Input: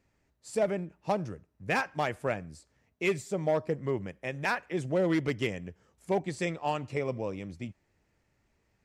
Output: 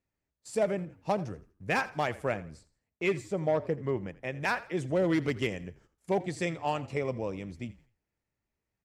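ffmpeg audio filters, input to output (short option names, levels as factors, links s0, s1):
-filter_complex "[0:a]agate=range=0.2:threshold=0.00126:ratio=16:detection=peak,asettb=1/sr,asplit=3[s0][s1][s2];[s0]atrim=end=2.374[s3];[s1]atrim=start=2.37:end=4.4,asetpts=PTS-STARTPTS,afade=t=in:d=0.004:c=qsin,afade=t=out:st=2.026:d=0.004:c=qsin,highshelf=f=5900:g=-9[s4];[s2]atrim=start=4.396[s5];[s3][s4]acrossfade=d=0.004:c1=hsin:c2=qsin[s6];[s6][s5]acrossfade=d=0.004:c1=qsin:c2=hsin,asplit=4[s7][s8][s9][s10];[s8]adelay=83,afreqshift=-40,volume=0.126[s11];[s9]adelay=166,afreqshift=-80,volume=0.0417[s12];[s10]adelay=249,afreqshift=-120,volume=0.0136[s13];[s7][s11][s12][s13]amix=inputs=4:normalize=0"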